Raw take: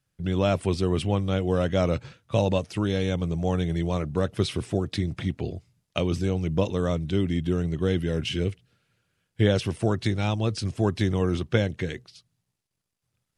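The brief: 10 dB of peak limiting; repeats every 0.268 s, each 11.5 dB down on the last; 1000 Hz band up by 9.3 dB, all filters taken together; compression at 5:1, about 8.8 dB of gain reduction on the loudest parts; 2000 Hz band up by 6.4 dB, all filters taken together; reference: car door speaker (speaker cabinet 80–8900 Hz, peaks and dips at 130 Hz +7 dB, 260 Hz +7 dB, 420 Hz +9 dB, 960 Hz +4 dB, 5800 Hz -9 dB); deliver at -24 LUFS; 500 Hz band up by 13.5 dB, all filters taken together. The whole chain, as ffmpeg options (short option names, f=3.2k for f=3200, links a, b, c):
-af "equalizer=f=500:t=o:g=8.5,equalizer=f=1k:t=o:g=5,equalizer=f=2k:t=o:g=6,acompressor=threshold=-21dB:ratio=5,alimiter=limit=-17dB:level=0:latency=1,highpass=80,equalizer=f=130:t=q:w=4:g=7,equalizer=f=260:t=q:w=4:g=7,equalizer=f=420:t=q:w=4:g=9,equalizer=f=960:t=q:w=4:g=4,equalizer=f=5.8k:t=q:w=4:g=-9,lowpass=f=8.9k:w=0.5412,lowpass=f=8.9k:w=1.3066,aecho=1:1:268|536|804:0.266|0.0718|0.0194,volume=1dB"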